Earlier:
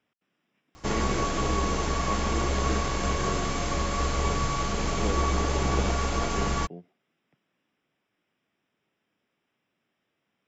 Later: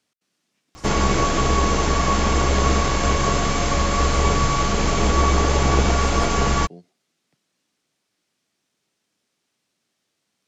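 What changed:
speech: remove Savitzky-Golay filter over 25 samples; background +8.0 dB

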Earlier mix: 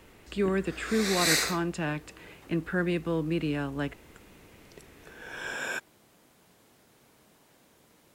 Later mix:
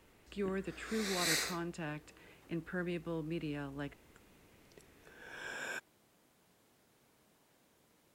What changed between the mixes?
speech -10.5 dB; background -8.5 dB

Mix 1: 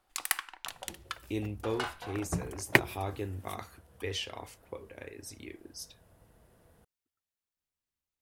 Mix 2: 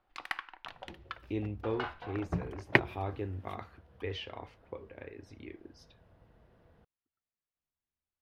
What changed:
second sound: add treble shelf 4 kHz +8 dB; master: add distance through air 310 m

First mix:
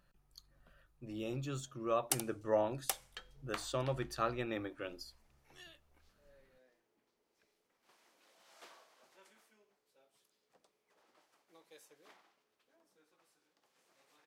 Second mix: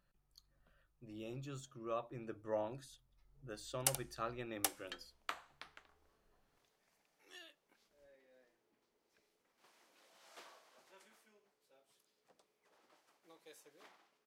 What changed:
speech -7.0 dB; background: entry +1.75 s

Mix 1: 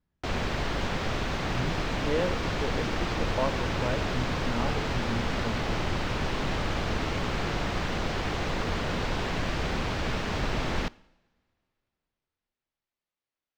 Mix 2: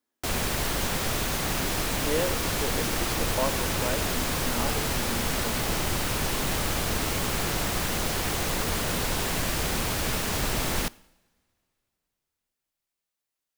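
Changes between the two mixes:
speech: add brick-wall FIR high-pass 220 Hz; master: remove distance through air 180 m

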